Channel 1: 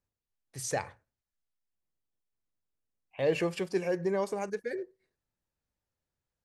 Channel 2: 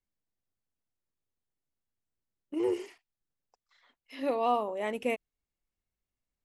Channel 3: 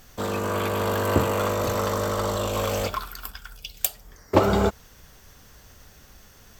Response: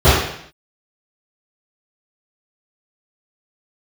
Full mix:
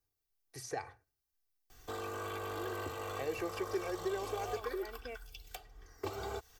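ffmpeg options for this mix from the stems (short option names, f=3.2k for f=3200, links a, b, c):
-filter_complex "[0:a]aexciter=amount=1.4:drive=7:freq=4.5k,volume=-2.5dB[a];[1:a]volume=-16dB[b];[2:a]acrossover=split=190|3000[c][d][e];[d]acompressor=threshold=-28dB:ratio=6[f];[c][f][e]amix=inputs=3:normalize=0,adelay=1700,volume=-10.5dB[g];[a][b][g]amix=inputs=3:normalize=0,acrossover=split=390|2200|5800[h][i][j][k];[h]acompressor=threshold=-49dB:ratio=4[l];[i]acompressor=threshold=-38dB:ratio=4[m];[j]acompressor=threshold=-56dB:ratio=4[n];[k]acompressor=threshold=-59dB:ratio=4[o];[l][m][n][o]amix=inputs=4:normalize=0,aecho=1:1:2.6:0.68"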